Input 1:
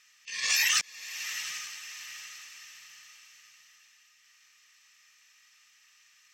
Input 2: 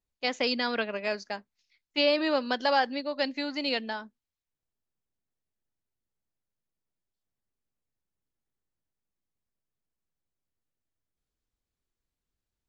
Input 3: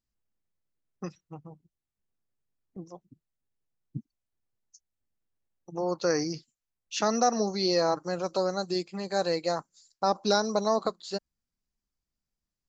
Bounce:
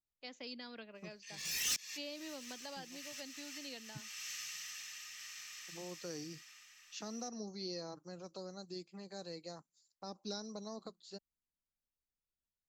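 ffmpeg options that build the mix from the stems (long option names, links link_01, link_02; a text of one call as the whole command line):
ffmpeg -i stem1.wav -i stem2.wav -i stem3.wav -filter_complex "[0:a]dynaudnorm=framelen=140:gausssize=21:maxgain=16dB,asoftclip=type=tanh:threshold=-26.5dB,adelay=950,volume=-2dB[link_01];[1:a]volume=-16.5dB,asplit=2[link_02][link_03];[2:a]volume=-14dB[link_04];[link_03]apad=whole_len=321353[link_05];[link_01][link_05]sidechaincompress=threshold=-57dB:ratio=12:attack=21:release=390[link_06];[link_06][link_02][link_04]amix=inputs=3:normalize=0,acrossover=split=350|3000[link_07][link_08][link_09];[link_08]acompressor=threshold=-57dB:ratio=2[link_10];[link_07][link_10][link_09]amix=inputs=3:normalize=0" out.wav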